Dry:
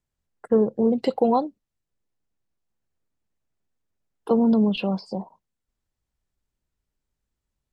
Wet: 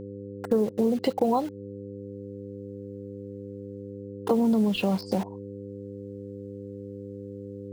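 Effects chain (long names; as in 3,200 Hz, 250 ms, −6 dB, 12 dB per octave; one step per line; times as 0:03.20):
in parallel at −3 dB: bit-depth reduction 6 bits, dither none
on the sum: automatic gain control gain up to 12 dB
hum with harmonics 100 Hz, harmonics 5, −36 dBFS 0 dB per octave
downward compressor 2.5 to 1, threshold −21 dBFS, peak gain reduction 9.5 dB
level −3 dB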